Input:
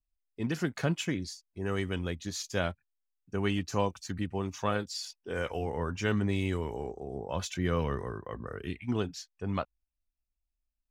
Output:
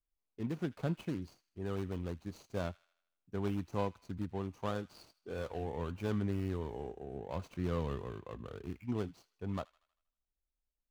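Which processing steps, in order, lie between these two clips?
median filter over 25 samples; feedback echo behind a high-pass 79 ms, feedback 51%, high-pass 1.6 kHz, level -19 dB; trim -5 dB

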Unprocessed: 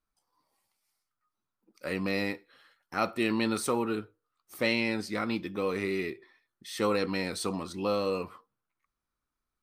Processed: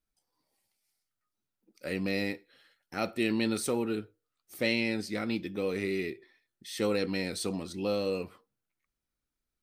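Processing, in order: peaking EQ 1.1 kHz -11.5 dB 0.73 oct

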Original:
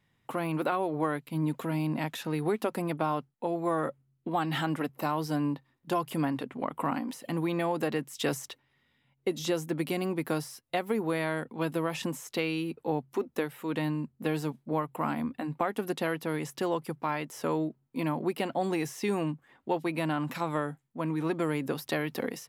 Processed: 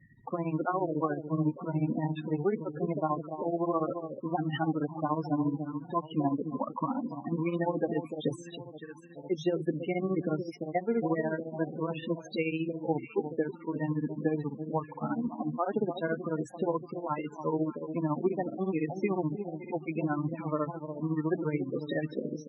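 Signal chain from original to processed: echo whose repeats swap between lows and highs 305 ms, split 1 kHz, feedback 64%, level -8 dB; granulator 100 ms, grains 14 per s, spray 37 ms, pitch spread up and down by 0 st; upward compressor, threshold -47 dBFS; loudest bins only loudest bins 16; trim +2.5 dB

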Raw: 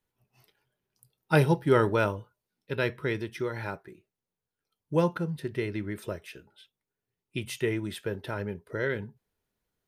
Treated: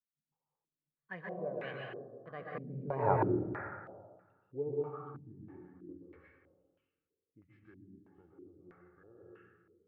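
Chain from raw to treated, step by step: Doppler pass-by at 3.08 s, 56 m/s, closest 5.3 m; plate-style reverb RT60 1.6 s, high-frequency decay 0.45×, pre-delay 110 ms, DRR -4 dB; step-sequenced low-pass 3.1 Hz 220–2600 Hz

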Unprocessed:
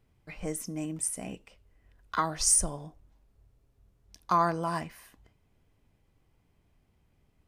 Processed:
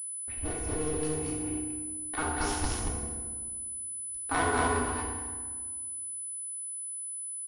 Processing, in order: cycle switcher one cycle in 2, inverted; gate -54 dBFS, range -18 dB; bass shelf 170 Hz +8 dB; comb 2.7 ms, depth 48%; loudspeakers at several distances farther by 24 m -8 dB, 68 m -9 dB, 79 m -2 dB; FDN reverb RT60 1.5 s, low-frequency decay 1.35×, high-frequency decay 0.65×, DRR -0.5 dB; class-D stage that switches slowly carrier 10 kHz; trim -8 dB

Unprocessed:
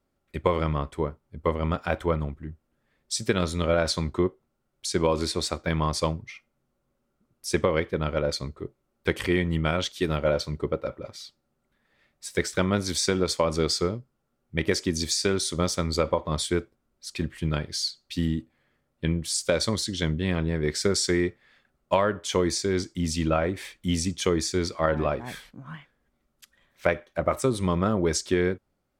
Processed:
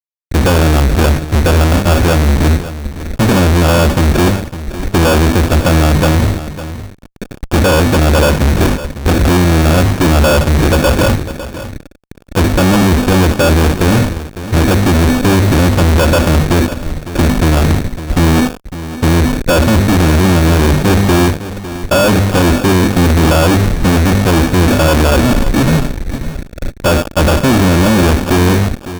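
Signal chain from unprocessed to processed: steep low-pass 750 Hz 72 dB/octave; tilt EQ -4 dB/octave; hum notches 50/100/150/200/250 Hz; comb 3.6 ms, depth 60%; compression 12:1, threshold -25 dBFS, peak gain reduction 15 dB; rotary cabinet horn 0.85 Hz; sample-and-hold 22×; fuzz box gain 54 dB, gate -51 dBFS; delay 555 ms -13.5 dB; trim +5 dB

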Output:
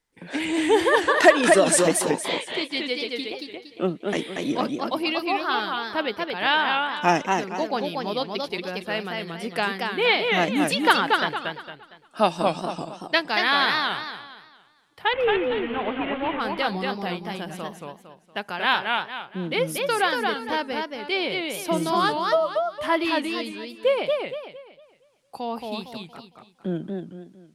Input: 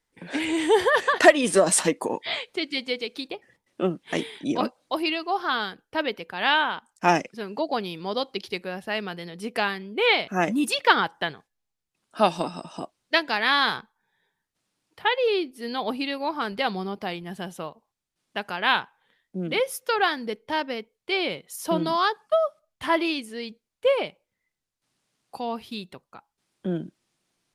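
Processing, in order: 15.13–16.40 s: one-bit delta coder 16 kbps, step -28 dBFS; modulated delay 230 ms, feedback 34%, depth 162 cents, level -3.5 dB

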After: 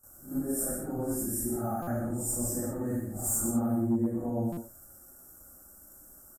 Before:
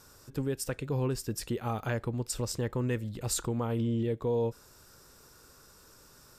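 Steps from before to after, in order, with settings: phase randomisation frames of 200 ms; treble shelf 4.4 kHz +9 dB; static phaser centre 670 Hz, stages 8; gate with hold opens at -45 dBFS; waveshaping leveller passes 1; on a send: delay 120 ms -7 dB; on the sum: hard clipper -22 dBFS, distortion -26 dB; Chebyshev band-stop 980–9000 Hz, order 2; peaking EQ 130 Hz +10 dB 0.75 oct; pre-echo 76 ms -13.5 dB; buffer glitch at 1.82/4.52 s, samples 256, times 8

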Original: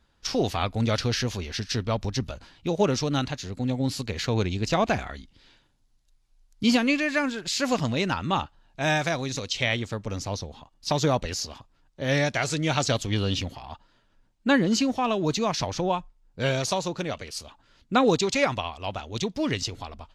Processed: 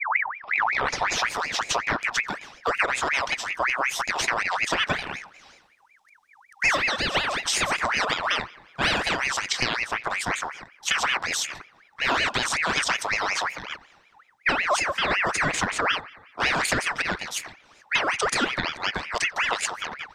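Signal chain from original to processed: tape start-up on the opening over 1.31 s; compression 10:1, threshold -25 dBFS, peak gain reduction 10.5 dB; rippled EQ curve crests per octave 1.4, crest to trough 7 dB; bucket-brigade echo 89 ms, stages 2048, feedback 64%, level -22.5 dB; ring modulator with a swept carrier 1.6 kHz, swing 50%, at 5.4 Hz; trim +7 dB

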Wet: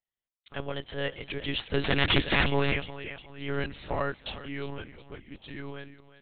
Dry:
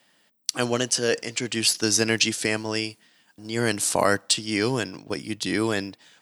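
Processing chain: Doppler pass-by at 2.37 s, 18 m/s, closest 4.9 m; gate with hold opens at -50 dBFS; on a send: thinning echo 360 ms, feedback 41%, high-pass 330 Hz, level -13.5 dB; on the sum: integer overflow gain 18 dB; monotone LPC vocoder at 8 kHz 140 Hz; trim +6.5 dB

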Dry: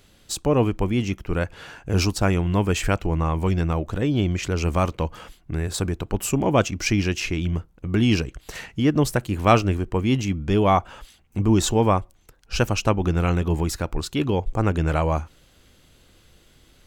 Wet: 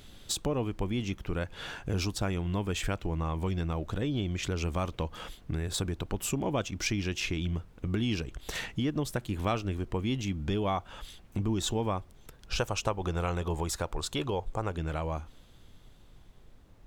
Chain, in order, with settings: fade out at the end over 3.57 s; 12.58–14.76 s: graphic EQ 250/500/1000/8000 Hz -6/+5/+6/+6 dB; compression 3:1, threshold -31 dBFS, peak gain reduction 15.5 dB; peaking EQ 3.5 kHz +7.5 dB 0.25 oct; added noise brown -53 dBFS

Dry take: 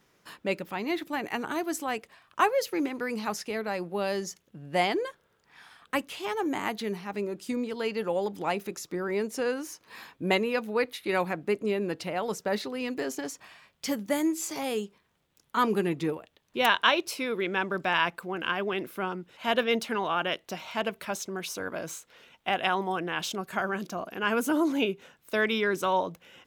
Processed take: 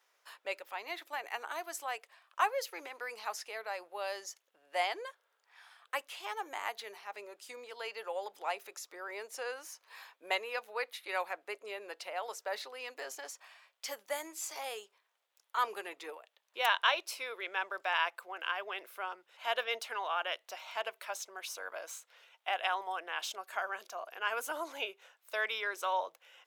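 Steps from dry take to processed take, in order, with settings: high-pass 570 Hz 24 dB/octave; trim -5.5 dB

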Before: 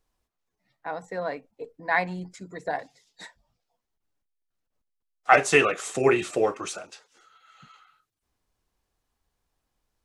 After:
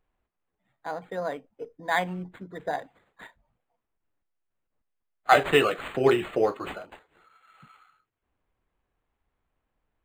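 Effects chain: decimation joined by straight lines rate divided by 8×

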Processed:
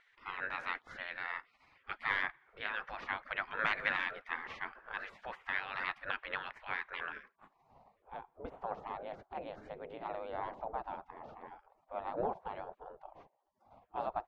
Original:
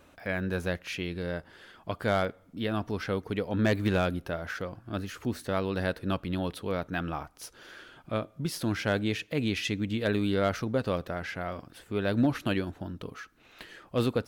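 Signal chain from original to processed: spectral gate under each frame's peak -20 dB weak; vibrato 15 Hz 34 cents; low-pass sweep 1.8 kHz -> 750 Hz, 7.00–7.74 s; trim +4.5 dB

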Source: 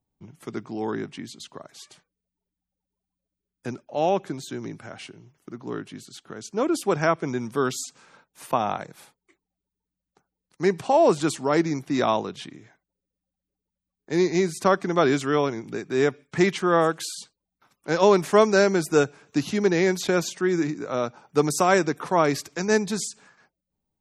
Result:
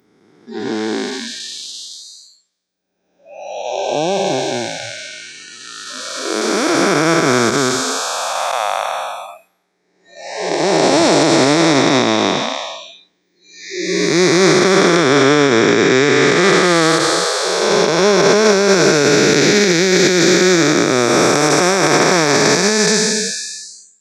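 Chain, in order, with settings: spectral blur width 896 ms; frequency weighting D; spectral noise reduction 25 dB; peaking EQ 2.9 kHz -9.5 dB 0.49 oct; loudness maximiser +20 dB; trim -1 dB

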